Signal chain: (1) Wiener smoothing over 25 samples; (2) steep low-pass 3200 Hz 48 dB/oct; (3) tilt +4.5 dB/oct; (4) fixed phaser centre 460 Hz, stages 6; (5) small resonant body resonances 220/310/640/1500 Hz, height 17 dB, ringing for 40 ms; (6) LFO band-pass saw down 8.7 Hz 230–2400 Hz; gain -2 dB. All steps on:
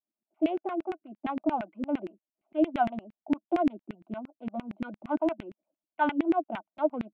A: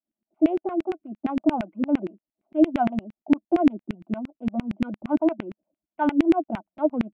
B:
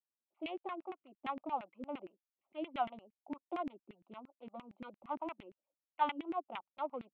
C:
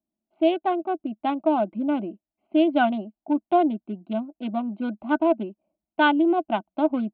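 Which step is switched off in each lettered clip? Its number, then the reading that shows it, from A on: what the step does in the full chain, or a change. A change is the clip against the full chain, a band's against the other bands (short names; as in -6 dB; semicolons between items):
3, 125 Hz band +6.5 dB; 5, 4 kHz band +10.5 dB; 6, 4 kHz band +6.5 dB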